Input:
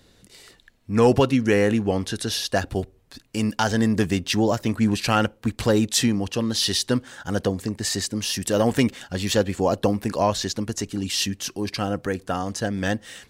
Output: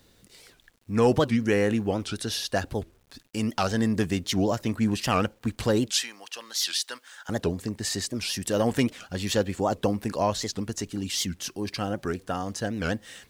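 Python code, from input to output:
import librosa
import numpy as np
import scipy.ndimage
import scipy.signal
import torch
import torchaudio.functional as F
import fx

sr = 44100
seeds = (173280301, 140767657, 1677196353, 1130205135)

y = fx.quant_dither(x, sr, seeds[0], bits=10, dither='none')
y = fx.highpass(y, sr, hz=1100.0, slope=12, at=(5.92, 7.29))
y = fx.record_warp(y, sr, rpm=78.0, depth_cents=250.0)
y = y * librosa.db_to_amplitude(-4.0)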